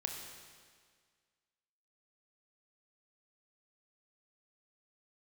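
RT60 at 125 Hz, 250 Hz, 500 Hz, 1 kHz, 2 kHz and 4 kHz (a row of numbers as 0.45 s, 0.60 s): 1.8 s, 1.8 s, 1.8 s, 1.8 s, 1.8 s, 1.7 s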